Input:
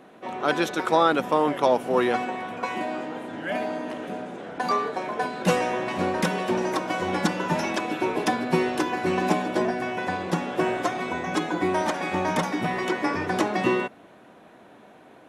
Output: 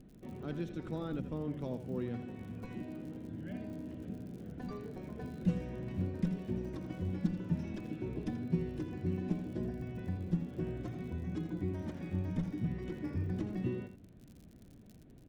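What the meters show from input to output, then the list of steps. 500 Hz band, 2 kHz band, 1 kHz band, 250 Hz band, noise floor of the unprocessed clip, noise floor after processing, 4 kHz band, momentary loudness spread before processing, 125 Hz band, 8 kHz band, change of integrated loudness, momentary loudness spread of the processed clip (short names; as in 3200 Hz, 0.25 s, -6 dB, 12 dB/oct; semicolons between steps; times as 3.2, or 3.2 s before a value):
-18.5 dB, -26.0 dB, -29.0 dB, -9.5 dB, -51 dBFS, -56 dBFS, -25.0 dB, 9 LU, -1.5 dB, under -25 dB, -13.5 dB, 9 LU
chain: RIAA curve playback; crackle 65/s -32 dBFS; passive tone stack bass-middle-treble 10-0-1; in parallel at +2 dB: compressor, threshold -50 dBFS, peak gain reduction 22 dB; on the sum: echo 83 ms -11 dB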